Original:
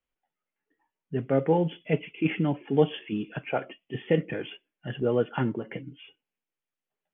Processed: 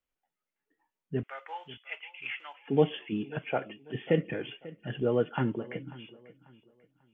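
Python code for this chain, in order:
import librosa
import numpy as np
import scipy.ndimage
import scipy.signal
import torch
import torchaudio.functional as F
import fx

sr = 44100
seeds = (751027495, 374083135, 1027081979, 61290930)

p1 = fx.highpass(x, sr, hz=1000.0, slope=24, at=(1.23, 2.68))
p2 = p1 + fx.echo_feedback(p1, sr, ms=542, feedback_pct=31, wet_db=-19.0, dry=0)
y = F.gain(torch.from_numpy(p2), -2.0).numpy()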